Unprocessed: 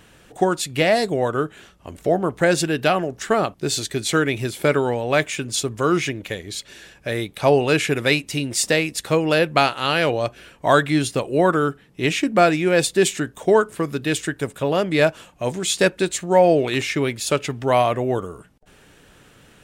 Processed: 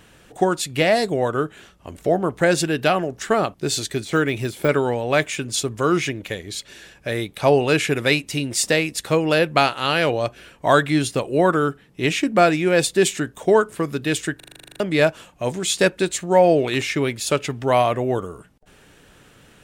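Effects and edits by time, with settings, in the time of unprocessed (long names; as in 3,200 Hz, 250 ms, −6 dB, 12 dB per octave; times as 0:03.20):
0:03.94–0:04.69: de-essing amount 70%
0:14.36: stutter in place 0.04 s, 11 plays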